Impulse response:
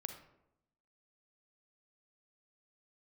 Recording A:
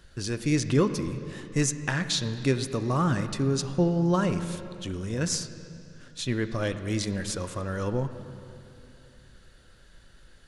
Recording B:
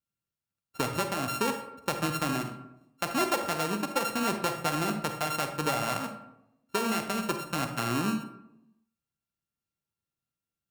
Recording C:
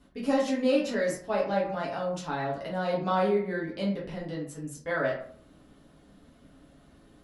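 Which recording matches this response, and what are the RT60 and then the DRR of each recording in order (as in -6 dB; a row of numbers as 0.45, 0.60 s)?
B; 2.8, 0.85, 0.55 s; 9.5, 6.5, -5.0 dB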